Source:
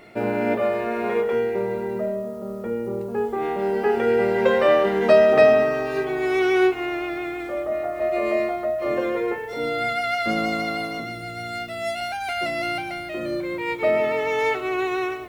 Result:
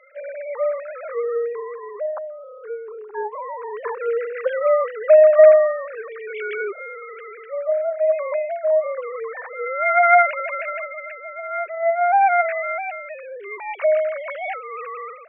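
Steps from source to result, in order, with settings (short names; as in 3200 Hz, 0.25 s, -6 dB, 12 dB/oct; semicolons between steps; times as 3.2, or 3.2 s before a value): sine-wave speech; HPF 550 Hz 6 dB/oct; bell 1000 Hz +14 dB 1.4 oct; gain -3 dB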